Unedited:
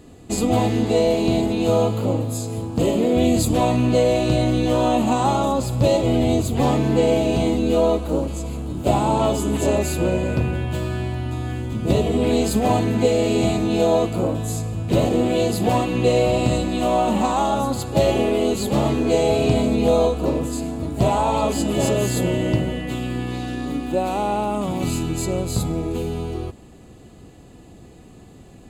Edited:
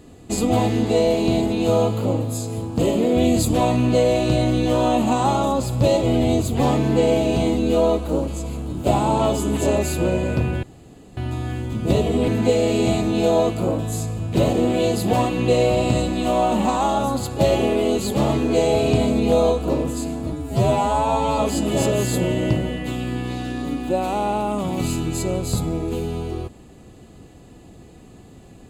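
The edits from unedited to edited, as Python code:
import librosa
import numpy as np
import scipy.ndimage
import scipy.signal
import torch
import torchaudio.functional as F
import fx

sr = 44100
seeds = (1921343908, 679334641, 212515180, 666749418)

y = fx.edit(x, sr, fx.room_tone_fill(start_s=10.63, length_s=0.54),
    fx.cut(start_s=12.28, length_s=0.56),
    fx.stretch_span(start_s=20.88, length_s=0.53, factor=2.0), tone=tone)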